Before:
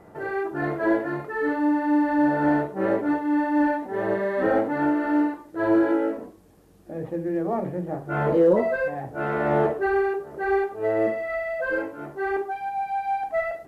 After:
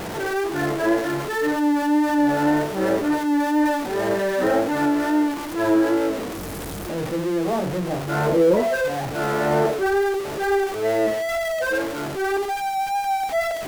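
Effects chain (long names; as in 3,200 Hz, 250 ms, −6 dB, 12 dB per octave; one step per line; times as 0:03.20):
converter with a step at zero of −25.5 dBFS
tape wow and flutter 28 cents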